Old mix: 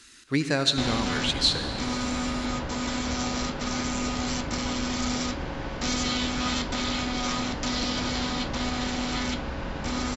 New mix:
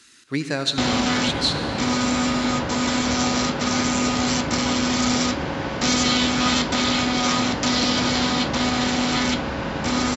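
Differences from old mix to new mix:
background +8.0 dB; master: add HPF 96 Hz 12 dB/oct

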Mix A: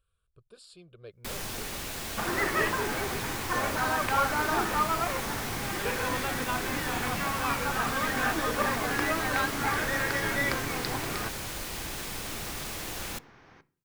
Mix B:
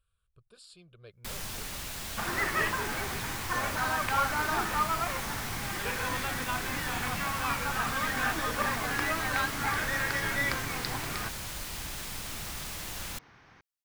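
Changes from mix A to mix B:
first sound: send off; master: add bell 400 Hz -6.5 dB 1.8 oct

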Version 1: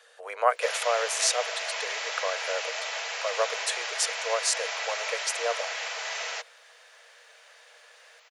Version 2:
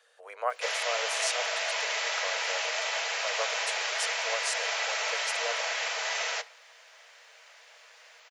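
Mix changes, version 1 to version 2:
speech -8.0 dB; reverb: on, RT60 0.45 s

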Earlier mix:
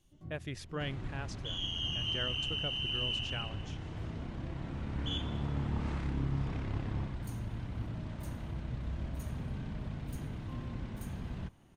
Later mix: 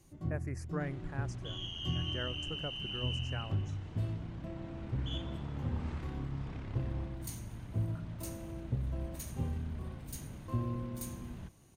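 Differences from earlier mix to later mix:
speech: add Butterworth band-stop 3400 Hz, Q 0.85; first sound +10.5 dB; second sound -5.5 dB

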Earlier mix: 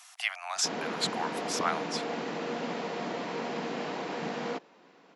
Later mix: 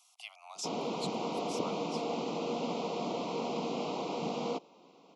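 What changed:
speech -11.5 dB; master: add Butterworth band-stop 1700 Hz, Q 1.3

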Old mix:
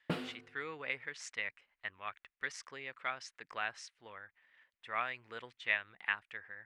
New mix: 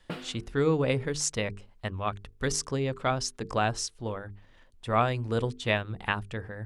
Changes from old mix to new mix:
speech: remove band-pass 2000 Hz, Q 2.7; master: add notches 50/100/150/200/250/300/350/400/450 Hz

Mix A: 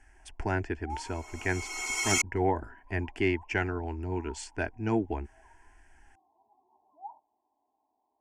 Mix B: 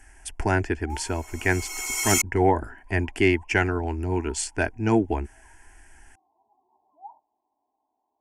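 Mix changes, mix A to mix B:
speech +7.0 dB; master: remove air absorption 70 m

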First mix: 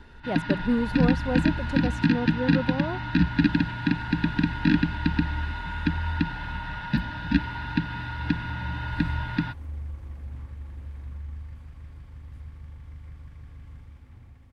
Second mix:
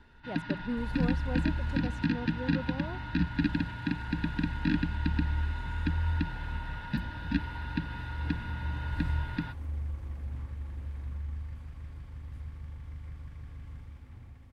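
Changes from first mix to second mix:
speech -10.0 dB; first sound -7.5 dB

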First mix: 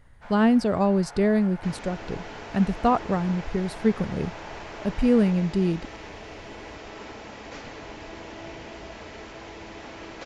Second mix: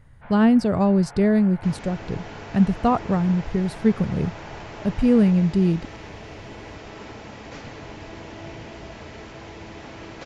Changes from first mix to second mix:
first sound: add LPF 3000 Hz 24 dB/oct; master: add bell 120 Hz +8.5 dB 1.5 oct

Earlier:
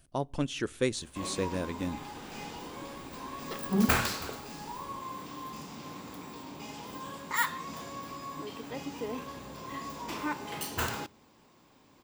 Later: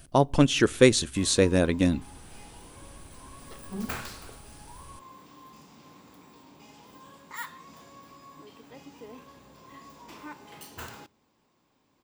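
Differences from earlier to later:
speech +11.5 dB; background -9.0 dB

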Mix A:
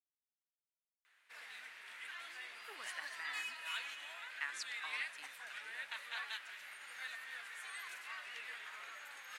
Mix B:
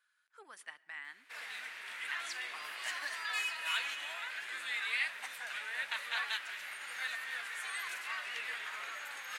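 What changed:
speech: entry -2.30 s; background +7.5 dB

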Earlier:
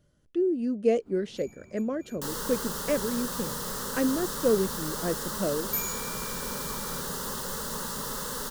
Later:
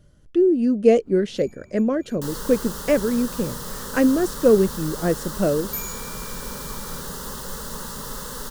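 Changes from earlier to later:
speech +8.0 dB; master: add low shelf 91 Hz +9.5 dB

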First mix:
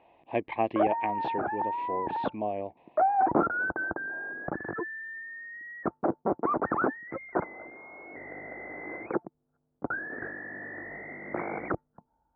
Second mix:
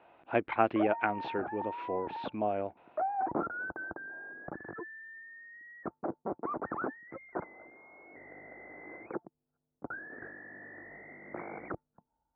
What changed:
speech: remove Butterworth band-stop 1400 Hz, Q 2; background -8.5 dB

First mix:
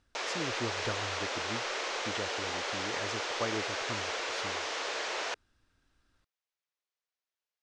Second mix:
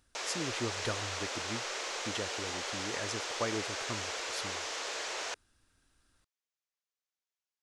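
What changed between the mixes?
background -4.5 dB; master: remove air absorption 96 m

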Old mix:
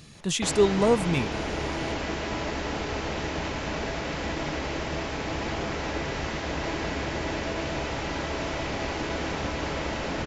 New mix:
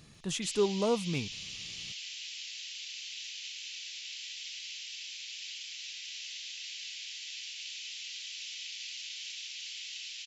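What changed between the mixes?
speech -7.5 dB; background: add steep high-pass 2800 Hz 36 dB/oct

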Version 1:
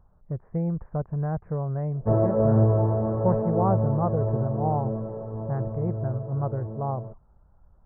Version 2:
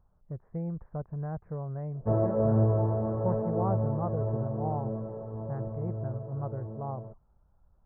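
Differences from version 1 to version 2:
speech -7.5 dB; background -4.5 dB

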